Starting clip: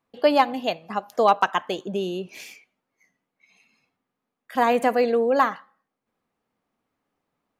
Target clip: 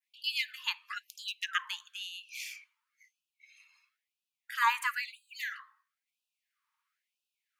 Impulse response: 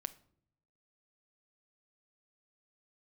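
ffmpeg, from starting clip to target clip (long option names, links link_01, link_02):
-af "adynamicequalizer=threshold=0.0112:dfrequency=4300:dqfactor=0.74:tfrequency=4300:tqfactor=0.74:attack=5:release=100:ratio=0.375:range=2.5:mode=cutabove:tftype=bell,afftfilt=real='re*gte(b*sr/1024,850*pow(2500/850,0.5+0.5*sin(2*PI*1*pts/sr)))':imag='im*gte(b*sr/1024,850*pow(2500/850,0.5+0.5*sin(2*PI*1*pts/sr)))':win_size=1024:overlap=0.75"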